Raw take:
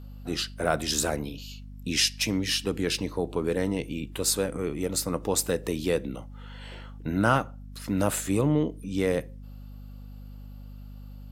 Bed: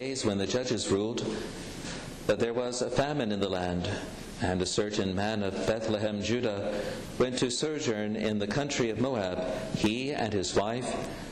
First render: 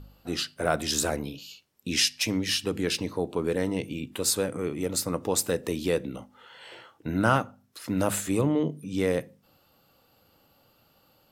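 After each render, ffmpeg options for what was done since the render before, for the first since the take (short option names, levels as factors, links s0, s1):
-af "bandreject=f=50:t=h:w=4,bandreject=f=100:t=h:w=4,bandreject=f=150:t=h:w=4,bandreject=f=200:t=h:w=4,bandreject=f=250:t=h:w=4"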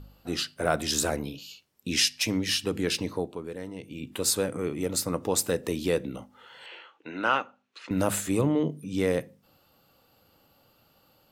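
-filter_complex "[0:a]asettb=1/sr,asplit=3[s0][s1][s2];[s0]atrim=end=6.664[s3];[s1]atrim=start=6.66:end=7.91,asetpts=PTS-STARTPTS,afade=t=in:d=0.004:c=qsin,afade=t=out:st=1.246:d=0.004:c=qsin,highpass=440,equalizer=f=660:t=q:w=4:g=-6,equalizer=f=2600:t=q:w=4:g=7,equalizer=f=5200:t=q:w=4:g=-9,lowpass=f=5800:w=0.5412,lowpass=f=5800:w=1.3066[s4];[s2]atrim=start=7.906[s5];[s3][s4]acrossfade=d=0.004:c1=hsin:c2=qsin[s6];[s6][s5]acrossfade=d=0.004:c1=qsin:c2=hsin,asplit=3[s7][s8][s9];[s7]atrim=end=3.5,asetpts=PTS-STARTPTS,afade=t=out:st=3.17:d=0.33:c=qua:silence=0.298538[s10];[s8]atrim=start=3.5:end=3.76,asetpts=PTS-STARTPTS,volume=0.299[s11];[s9]atrim=start=3.76,asetpts=PTS-STARTPTS,afade=t=in:d=0.33:c=qua:silence=0.298538[s12];[s10][s11][s12]concat=n=3:v=0:a=1"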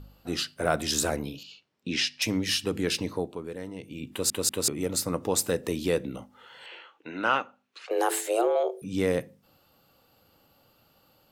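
-filter_complex "[0:a]asettb=1/sr,asplit=3[s0][s1][s2];[s0]atrim=end=1.434[s3];[s1]atrim=start=1.43:end=2.22,asetpts=PTS-STARTPTS,afade=t=in:d=0.004:c=qsin,afade=t=out:st=0.786:d=0.004:c=qsin,highpass=120,lowpass=4100[s4];[s2]atrim=start=2.216[s5];[s3][s4]acrossfade=d=0.004:c1=hsin:c2=qsin[s6];[s6][s5]acrossfade=d=0.004:c1=qsin:c2=hsin,asettb=1/sr,asplit=3[s7][s8][s9];[s7]atrim=end=7.854[s10];[s8]atrim=start=7.85:end=8.82,asetpts=PTS-STARTPTS,afade=t=in:d=0.004:c=qsin,afade=t=out:st=0.966:d=0.004:c=qsin,afreqshift=230[s11];[s9]atrim=start=8.816[s12];[s10][s11]acrossfade=d=0.004:c1=hsin:c2=qsin[s13];[s13][s12]acrossfade=d=0.004:c1=qsin:c2=hsin,asplit=4[s14][s15][s16][s17];[s14]atrim=end=4.302[s18];[s15]atrim=start=4.108:end=4.302[s19];[s16]atrim=start=4.108:end=4.302[s20];[s17]atrim=start=4.678[s21];[s18][s19]acrossfade=d=0.004:c1=hsin:c2=hsin[s22];[s22][s20]acrossfade=d=0.004:c1=hsin:c2=hsin[s23];[s23][s21]acrossfade=d=0.004:c1=hsin:c2=hsin"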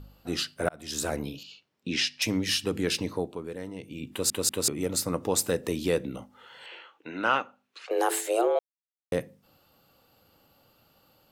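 -filter_complex "[0:a]asplit=4[s0][s1][s2][s3];[s0]atrim=end=0.69,asetpts=PTS-STARTPTS,afade=t=out:st=0.686:d=0.004:c=hsin[s4];[s1]atrim=start=0.69:end=8.59,asetpts=PTS-STARTPTS,afade=t=in:d=0.53,afade=t=out:st=7.896:d=0.004:c=hsin[s5];[s2]atrim=start=8.59:end=9.12,asetpts=PTS-STARTPTS,volume=0[s6];[s3]atrim=start=9.12,asetpts=PTS-STARTPTS,afade=t=in:d=0.004:c=hsin[s7];[s4][s5][s6][s7]concat=n=4:v=0:a=1"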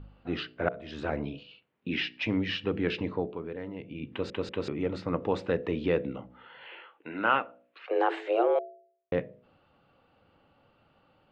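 -af "lowpass=f=2900:w=0.5412,lowpass=f=2900:w=1.3066,bandreject=f=61.8:t=h:w=4,bandreject=f=123.6:t=h:w=4,bandreject=f=185.4:t=h:w=4,bandreject=f=247.2:t=h:w=4,bandreject=f=309:t=h:w=4,bandreject=f=370.8:t=h:w=4,bandreject=f=432.6:t=h:w=4,bandreject=f=494.4:t=h:w=4,bandreject=f=556.2:t=h:w=4,bandreject=f=618:t=h:w=4,bandreject=f=679.8:t=h:w=4"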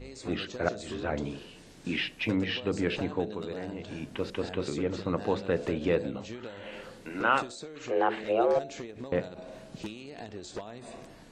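-filter_complex "[1:a]volume=0.237[s0];[0:a][s0]amix=inputs=2:normalize=0"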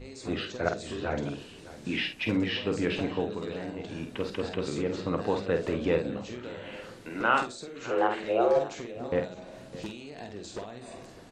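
-filter_complex "[0:a]asplit=2[s0][s1];[s1]adelay=49,volume=0.473[s2];[s0][s2]amix=inputs=2:normalize=0,aecho=1:1:607:0.15"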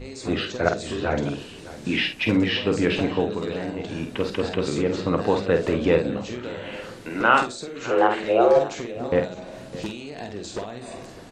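-af "volume=2.24"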